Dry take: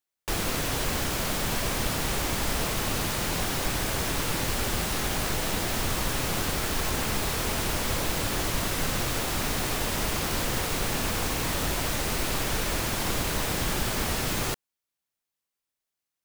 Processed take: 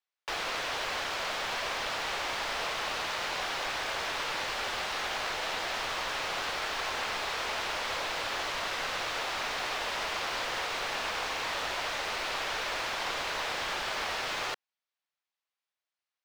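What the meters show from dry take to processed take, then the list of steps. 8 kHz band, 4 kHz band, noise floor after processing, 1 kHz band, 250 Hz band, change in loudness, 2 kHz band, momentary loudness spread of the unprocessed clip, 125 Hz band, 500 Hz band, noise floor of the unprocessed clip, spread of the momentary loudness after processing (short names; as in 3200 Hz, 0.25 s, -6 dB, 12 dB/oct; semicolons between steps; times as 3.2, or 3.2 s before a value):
-11.5 dB, -2.0 dB, under -85 dBFS, -0.5 dB, -16.5 dB, -4.5 dB, 0.0 dB, 0 LU, -21.5 dB, -5.0 dB, under -85 dBFS, 0 LU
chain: three-band isolator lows -22 dB, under 510 Hz, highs -22 dB, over 5300 Hz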